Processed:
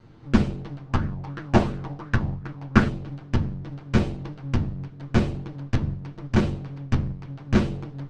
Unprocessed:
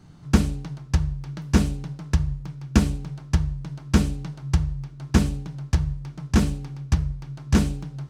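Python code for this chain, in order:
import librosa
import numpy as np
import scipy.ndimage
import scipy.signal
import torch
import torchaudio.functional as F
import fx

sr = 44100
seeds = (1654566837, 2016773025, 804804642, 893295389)

y = fx.lower_of_two(x, sr, delay_ms=8.8)
y = scipy.signal.sosfilt(scipy.signal.butter(2, 3500.0, 'lowpass', fs=sr, output='sos'), y)
y = fx.bell_lfo(y, sr, hz=2.8, low_hz=730.0, high_hz=1600.0, db=12, at=(0.86, 2.89))
y = y * 10.0 ** (1.0 / 20.0)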